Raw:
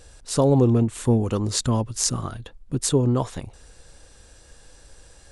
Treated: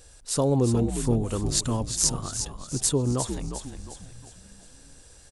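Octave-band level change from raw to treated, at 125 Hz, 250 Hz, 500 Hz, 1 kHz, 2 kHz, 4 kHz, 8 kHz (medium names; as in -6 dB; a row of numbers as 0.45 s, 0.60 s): -4.5 dB, -4.5 dB, -4.5 dB, -4.0 dB, -3.5 dB, -0.5 dB, +1.5 dB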